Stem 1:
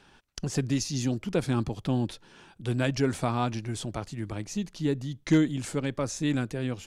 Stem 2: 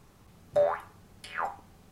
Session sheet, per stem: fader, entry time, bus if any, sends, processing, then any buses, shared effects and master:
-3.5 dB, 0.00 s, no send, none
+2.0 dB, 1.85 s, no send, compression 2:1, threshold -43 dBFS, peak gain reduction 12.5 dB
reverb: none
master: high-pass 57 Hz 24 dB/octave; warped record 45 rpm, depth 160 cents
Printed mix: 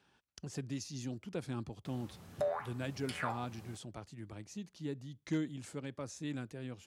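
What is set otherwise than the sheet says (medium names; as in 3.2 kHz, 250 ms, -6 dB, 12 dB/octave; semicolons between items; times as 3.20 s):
stem 1 -3.5 dB -> -13.0 dB; master: missing warped record 45 rpm, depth 160 cents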